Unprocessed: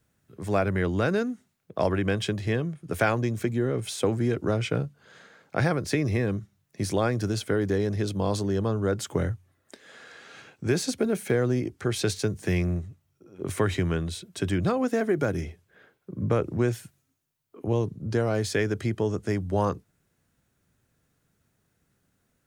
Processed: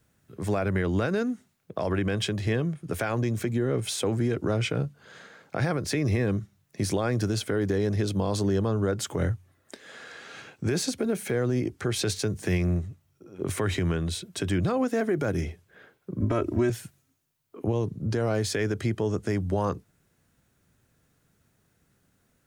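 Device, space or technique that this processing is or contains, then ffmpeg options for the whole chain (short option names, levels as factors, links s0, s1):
stacked limiters: -filter_complex "[0:a]alimiter=limit=0.15:level=0:latency=1:release=64,alimiter=limit=0.0944:level=0:latency=1:release=164,asettb=1/sr,asplit=3[s0][s1][s2];[s0]atrim=end=16.204[s3];[s1]atrim=start=16.2:end=16.7,asetpts=PTS-STARTPTS,afade=t=in:d=0.004:c=qsin,afade=t=out:st=0.496:d=0.004:c=qsin,aecho=1:1:3.1:0.99,atrim=end_sample=22050[s4];[s2]atrim=start=16.696[s5];[s3][s4]acrossfade=d=0.004:c1=hsin:c2=qsin[s6];[s6][s5]acrossfade=d=0.004:c1=qsin:c2=hsin,volume=1.5"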